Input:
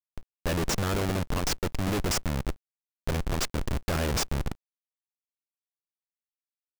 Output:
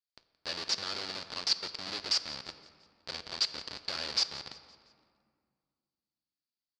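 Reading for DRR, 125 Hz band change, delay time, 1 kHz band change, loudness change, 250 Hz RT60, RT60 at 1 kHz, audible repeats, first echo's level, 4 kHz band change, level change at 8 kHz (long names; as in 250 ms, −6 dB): 10.0 dB, −26.5 dB, 172 ms, −9.5 dB, −3.0 dB, 2.7 s, 2.0 s, 3, −19.0 dB, +5.0 dB, −7.5 dB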